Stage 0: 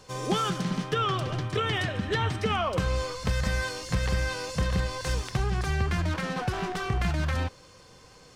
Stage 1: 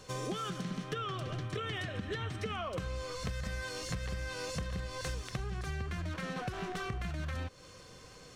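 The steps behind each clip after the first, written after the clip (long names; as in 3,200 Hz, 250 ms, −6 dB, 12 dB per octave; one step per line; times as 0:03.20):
parametric band 880 Hz −9.5 dB 0.21 octaves
notch filter 4,900 Hz, Q 17
downward compressor 6 to 1, threshold −35 dBFS, peak gain reduction 13 dB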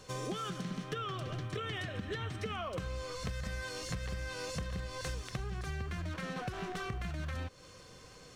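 floating-point word with a short mantissa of 6 bits
level −1 dB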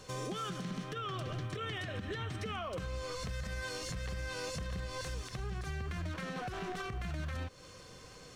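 brickwall limiter −32 dBFS, peak gain reduction 7.5 dB
level +1.5 dB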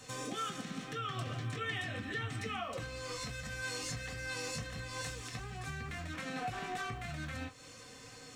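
convolution reverb, pre-delay 3 ms, DRR 0.5 dB
level +1 dB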